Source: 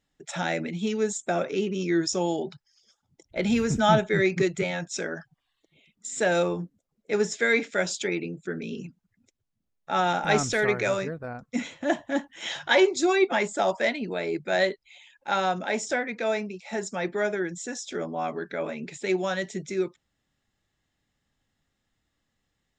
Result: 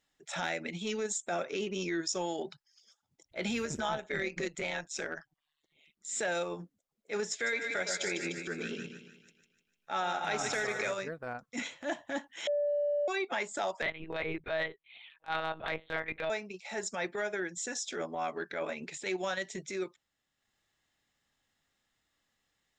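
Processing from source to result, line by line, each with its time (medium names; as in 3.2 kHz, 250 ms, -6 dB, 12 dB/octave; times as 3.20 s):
3.65–6.09 s: AM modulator 150 Hz, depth 50%
7.31–10.92 s: two-band feedback delay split 1.2 kHz, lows 110 ms, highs 150 ms, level -7 dB
12.47–13.08 s: bleep 583 Hz -15.5 dBFS
13.82–16.30 s: monotone LPC vocoder at 8 kHz 160 Hz
whole clip: bass shelf 380 Hz -11.5 dB; transient shaper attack -9 dB, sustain -5 dB; compression, threshold -32 dBFS; trim +2 dB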